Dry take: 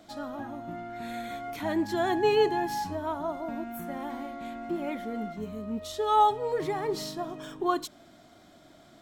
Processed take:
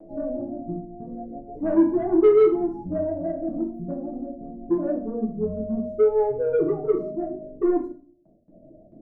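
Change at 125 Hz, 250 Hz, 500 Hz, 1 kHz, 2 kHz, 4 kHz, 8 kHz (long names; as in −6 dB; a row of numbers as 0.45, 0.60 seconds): +5.5 dB, +9.0 dB, +8.5 dB, −8.5 dB, can't be measured, below −20 dB, below −35 dB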